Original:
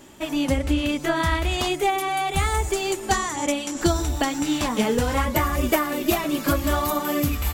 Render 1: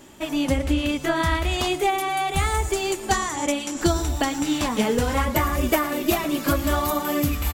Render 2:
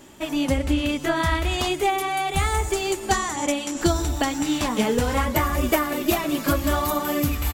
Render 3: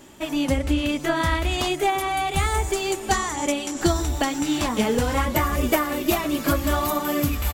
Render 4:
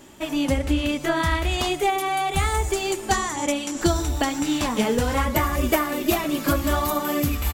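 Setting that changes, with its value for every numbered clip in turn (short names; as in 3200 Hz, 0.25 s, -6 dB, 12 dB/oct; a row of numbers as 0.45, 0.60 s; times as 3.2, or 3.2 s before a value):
feedback echo, time: 113, 188, 729, 73 ms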